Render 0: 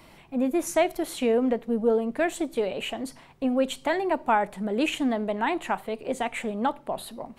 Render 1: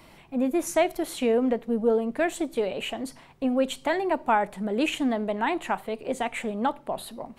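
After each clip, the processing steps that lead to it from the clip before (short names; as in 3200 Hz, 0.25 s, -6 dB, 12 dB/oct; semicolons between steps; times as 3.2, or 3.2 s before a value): nothing audible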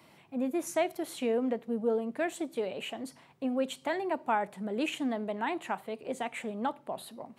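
HPF 97 Hz 24 dB/oct; gain -6.5 dB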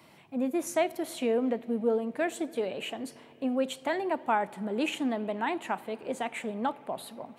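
reverb RT60 4.8 s, pre-delay 55 ms, DRR 19.5 dB; gain +2 dB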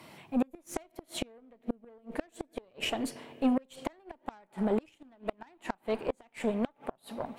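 added harmonics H 8 -22 dB, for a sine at -14 dBFS; flipped gate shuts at -22 dBFS, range -33 dB; gain +4.5 dB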